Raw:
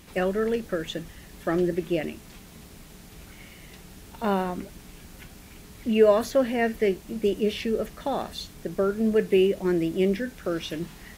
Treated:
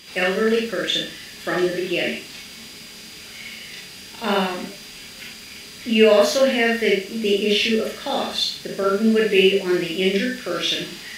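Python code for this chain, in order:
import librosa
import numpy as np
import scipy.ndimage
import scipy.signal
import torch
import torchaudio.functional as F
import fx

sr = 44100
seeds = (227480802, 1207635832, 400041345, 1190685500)

y = fx.weighting(x, sr, curve='D')
y = y + 10.0 ** (-47.0 / 20.0) * np.sin(2.0 * np.pi * 4800.0 * np.arange(len(y)) / sr)
y = fx.rev_schroeder(y, sr, rt60_s=0.39, comb_ms=28, drr_db=-2.5)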